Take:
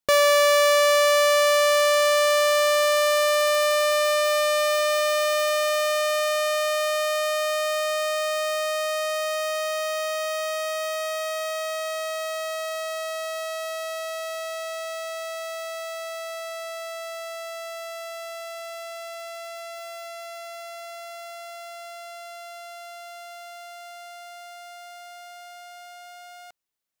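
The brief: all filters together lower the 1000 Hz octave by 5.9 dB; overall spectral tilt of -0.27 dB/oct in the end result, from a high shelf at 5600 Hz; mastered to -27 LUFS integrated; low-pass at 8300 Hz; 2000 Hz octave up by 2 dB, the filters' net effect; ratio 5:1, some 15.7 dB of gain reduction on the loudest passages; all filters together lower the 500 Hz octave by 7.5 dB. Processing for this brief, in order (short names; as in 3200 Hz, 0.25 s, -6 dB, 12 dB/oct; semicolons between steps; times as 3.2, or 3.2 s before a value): LPF 8300 Hz; bell 500 Hz -6.5 dB; bell 1000 Hz -8.5 dB; bell 2000 Hz +4 dB; high shelf 5600 Hz +6 dB; compressor 5:1, threshold -35 dBFS; gain +11 dB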